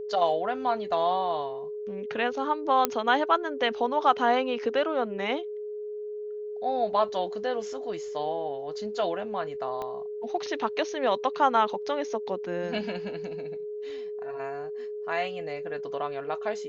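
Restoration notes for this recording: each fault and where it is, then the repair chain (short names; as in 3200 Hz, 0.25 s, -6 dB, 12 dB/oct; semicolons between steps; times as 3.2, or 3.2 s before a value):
tone 420 Hz -33 dBFS
2.85 pop -7 dBFS
9.82 pop -22 dBFS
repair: de-click; notch 420 Hz, Q 30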